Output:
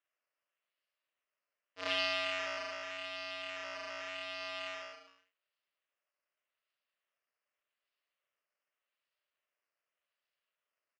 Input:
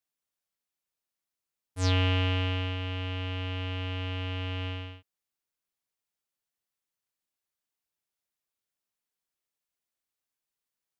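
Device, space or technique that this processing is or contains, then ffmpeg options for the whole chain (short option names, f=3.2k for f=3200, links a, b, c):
circuit-bent sampling toy: -filter_complex "[0:a]asettb=1/sr,asplit=3[a][b][c];[a]atrim=end=4.404[d];[b]atrim=start=4.4:end=4.93,asetpts=PTS-STARTPTS,afade=t=in:d=0.004:c=qsin,afade=t=out:st=0.526:d=0.004:c=qsin,equalizer=f=980:w=1.4:g=4[e];[c]atrim=start=4.926[f];[d][e]acrossfade=d=0.004:c1=hsin:c2=qsin[g];[g][f]acrossfade=d=0.004:c1=qsin:c2=hsin,aecho=1:1:40|88|145.6|214.7|297.7:0.631|0.398|0.251|0.158|0.1,acrusher=samples=9:mix=1:aa=0.000001:lfo=1:lforange=5.4:lforate=0.85,highpass=570,equalizer=f=590:t=q:w=4:g=8,equalizer=f=830:t=q:w=4:g=-8,equalizer=f=1.2k:t=q:w=4:g=3,equalizer=f=1.9k:t=q:w=4:g=4,equalizer=f=2.8k:t=q:w=4:g=7,equalizer=f=5k:t=q:w=4:g=6,lowpass=f=5.6k:w=0.5412,lowpass=f=5.6k:w=1.3066,volume=-6.5dB"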